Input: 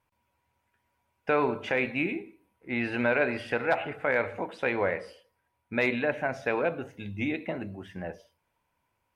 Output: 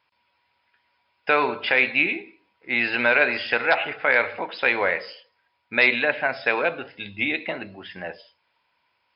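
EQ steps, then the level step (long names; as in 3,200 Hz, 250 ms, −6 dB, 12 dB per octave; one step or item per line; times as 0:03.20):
linear-phase brick-wall low-pass 5,300 Hz
spectral tilt +4 dB per octave
+6.5 dB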